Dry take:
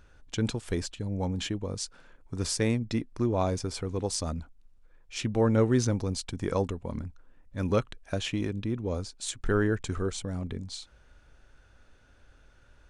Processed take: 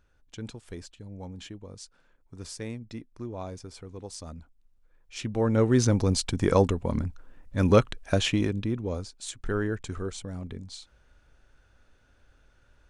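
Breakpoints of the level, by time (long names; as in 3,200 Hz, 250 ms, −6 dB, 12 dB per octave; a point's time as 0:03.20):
0:04.10 −10 dB
0:05.46 −1 dB
0:06.09 +7 dB
0:08.20 +7 dB
0:09.19 −3 dB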